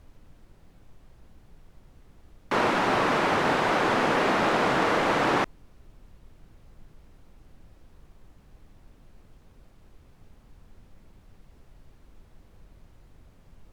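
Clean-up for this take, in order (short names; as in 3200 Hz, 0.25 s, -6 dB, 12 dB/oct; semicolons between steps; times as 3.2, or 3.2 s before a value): clip repair -14.5 dBFS; noise print and reduce 18 dB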